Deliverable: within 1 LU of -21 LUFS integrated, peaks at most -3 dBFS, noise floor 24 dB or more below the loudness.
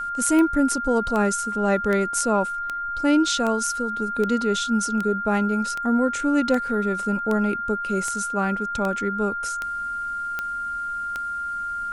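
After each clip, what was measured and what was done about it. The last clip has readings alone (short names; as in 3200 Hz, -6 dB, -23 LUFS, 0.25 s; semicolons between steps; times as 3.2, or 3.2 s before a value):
clicks 16; steady tone 1400 Hz; tone level -26 dBFS; loudness -23.5 LUFS; peak -7.0 dBFS; loudness target -21.0 LUFS
-> de-click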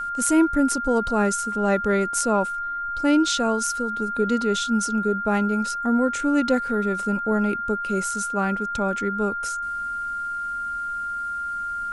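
clicks 1; steady tone 1400 Hz; tone level -26 dBFS
-> notch 1400 Hz, Q 30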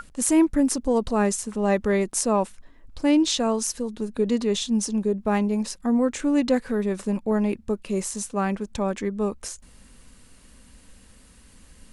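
steady tone none; loudness -24.0 LUFS; peak -6.5 dBFS; loudness target -21.0 LUFS
-> gain +3 dB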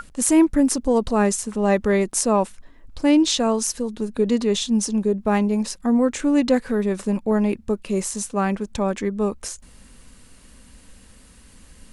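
loudness -21.0 LUFS; peak -3.5 dBFS; noise floor -49 dBFS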